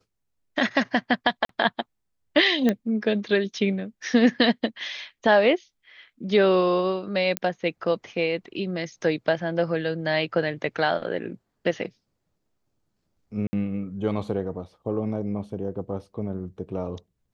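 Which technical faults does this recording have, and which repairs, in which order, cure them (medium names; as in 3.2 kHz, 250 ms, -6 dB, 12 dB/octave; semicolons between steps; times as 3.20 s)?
1.45–1.49 s: dropout 43 ms
2.69 s: pop -10 dBFS
7.37 s: pop -8 dBFS
13.47–13.53 s: dropout 60 ms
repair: de-click; interpolate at 1.45 s, 43 ms; interpolate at 13.47 s, 60 ms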